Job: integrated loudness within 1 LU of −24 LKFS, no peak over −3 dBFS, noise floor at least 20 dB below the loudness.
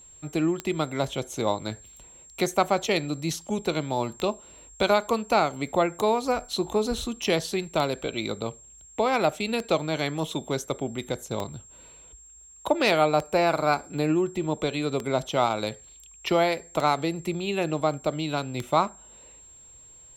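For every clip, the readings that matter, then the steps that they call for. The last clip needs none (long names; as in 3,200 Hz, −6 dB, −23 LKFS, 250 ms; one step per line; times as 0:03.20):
number of clicks 11; interfering tone 7,500 Hz; level of the tone −48 dBFS; integrated loudness −26.5 LKFS; sample peak −8.0 dBFS; target loudness −24.0 LKFS
→ click removal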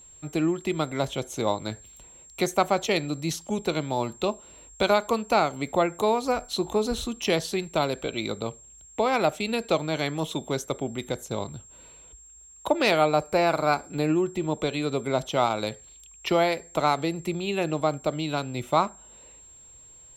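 number of clicks 0; interfering tone 7,500 Hz; level of the tone −48 dBFS
→ notch filter 7,500 Hz, Q 30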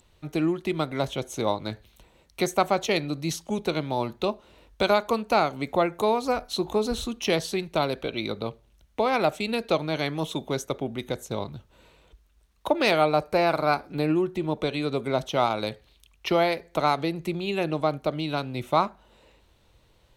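interfering tone none found; integrated loudness −26.5 LKFS; sample peak −8.0 dBFS; target loudness −24.0 LKFS
→ level +2.5 dB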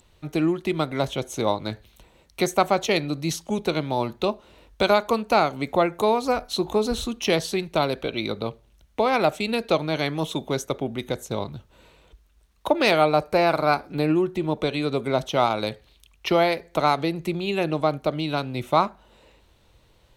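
integrated loudness −24.0 LKFS; sample peak −5.5 dBFS; background noise floor −59 dBFS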